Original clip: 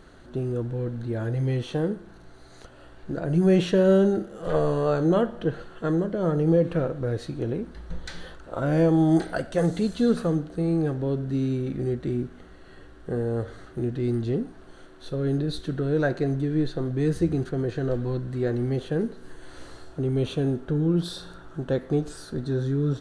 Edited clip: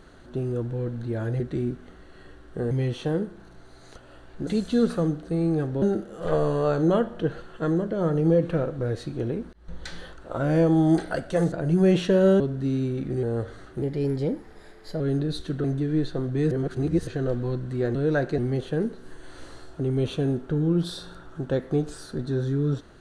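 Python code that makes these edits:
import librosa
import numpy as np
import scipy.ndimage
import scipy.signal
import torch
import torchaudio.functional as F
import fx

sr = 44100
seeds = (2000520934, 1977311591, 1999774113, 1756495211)

y = fx.edit(x, sr, fx.swap(start_s=3.16, length_s=0.88, other_s=9.74, other_length_s=1.35),
    fx.fade_in_span(start_s=7.75, length_s=0.31),
    fx.move(start_s=11.92, length_s=1.31, to_s=1.4),
    fx.speed_span(start_s=13.82, length_s=1.37, speed=1.16),
    fx.move(start_s=15.83, length_s=0.43, to_s=18.57),
    fx.reverse_span(start_s=17.13, length_s=0.56), tone=tone)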